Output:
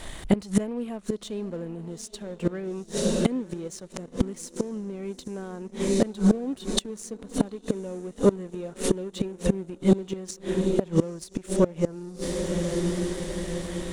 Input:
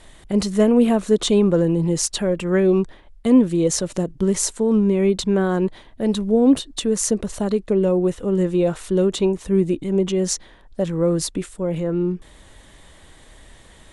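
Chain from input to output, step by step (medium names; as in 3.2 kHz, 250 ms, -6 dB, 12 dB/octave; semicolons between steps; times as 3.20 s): echo that smears into a reverb 878 ms, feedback 52%, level -14.5 dB; inverted gate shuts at -14 dBFS, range -25 dB; waveshaping leveller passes 1; trim +4.5 dB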